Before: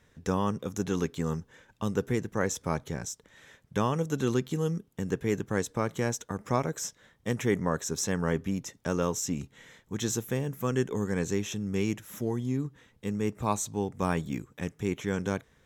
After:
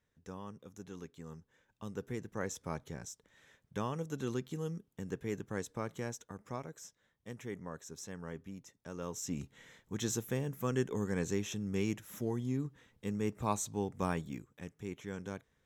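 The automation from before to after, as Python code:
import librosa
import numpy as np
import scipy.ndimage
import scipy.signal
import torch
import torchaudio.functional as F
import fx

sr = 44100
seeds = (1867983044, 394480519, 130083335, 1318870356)

y = fx.gain(x, sr, db=fx.line((1.24, -18.0), (2.39, -9.5), (5.9, -9.5), (6.81, -16.0), (8.91, -16.0), (9.39, -5.0), (14.01, -5.0), (14.56, -12.0)))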